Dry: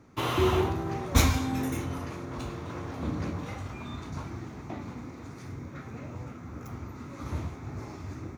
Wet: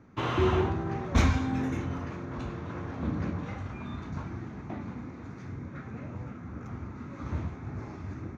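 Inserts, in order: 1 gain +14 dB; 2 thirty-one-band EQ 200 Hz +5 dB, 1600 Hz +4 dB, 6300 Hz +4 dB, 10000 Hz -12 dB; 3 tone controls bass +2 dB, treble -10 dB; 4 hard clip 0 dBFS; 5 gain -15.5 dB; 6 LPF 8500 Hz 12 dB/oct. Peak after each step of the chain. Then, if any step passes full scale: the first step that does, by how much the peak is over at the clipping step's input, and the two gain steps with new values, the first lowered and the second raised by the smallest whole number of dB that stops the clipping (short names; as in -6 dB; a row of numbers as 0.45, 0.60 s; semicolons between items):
+7.0, +7.0, +8.0, 0.0, -15.5, -15.0 dBFS; step 1, 8.0 dB; step 1 +6 dB, step 5 -7.5 dB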